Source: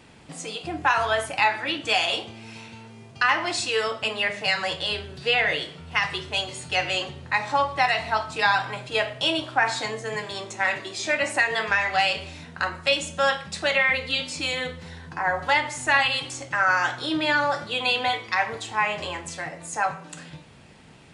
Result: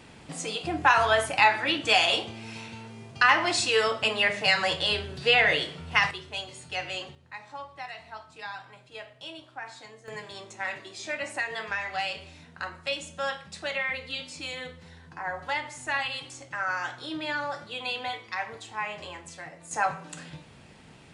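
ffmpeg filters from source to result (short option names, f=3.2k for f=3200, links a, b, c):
-af "asetnsamples=n=441:p=0,asendcmd='6.11 volume volume -8.5dB;7.15 volume volume -18dB;10.08 volume volume -9dB;19.71 volume volume -1.5dB',volume=1dB"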